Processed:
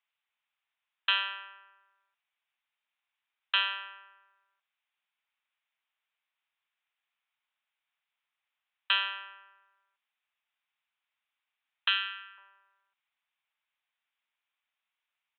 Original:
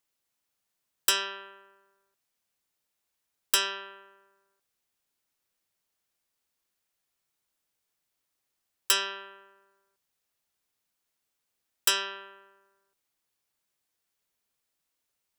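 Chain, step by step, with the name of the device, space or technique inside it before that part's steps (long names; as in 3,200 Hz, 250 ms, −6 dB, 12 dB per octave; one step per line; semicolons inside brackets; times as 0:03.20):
musical greeting card (downsampling to 8,000 Hz; high-pass filter 800 Hz 24 dB per octave; parametric band 2,400 Hz +4.5 dB 0.54 octaves)
0:11.88–0:12.38: elliptic band-pass filter 1,300–8,700 Hz, stop band 40 dB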